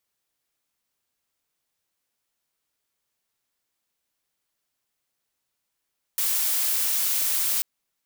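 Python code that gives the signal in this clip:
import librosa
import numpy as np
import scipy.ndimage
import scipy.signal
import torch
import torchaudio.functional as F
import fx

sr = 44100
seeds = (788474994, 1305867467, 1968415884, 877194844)

y = fx.noise_colour(sr, seeds[0], length_s=1.44, colour='blue', level_db=-24.0)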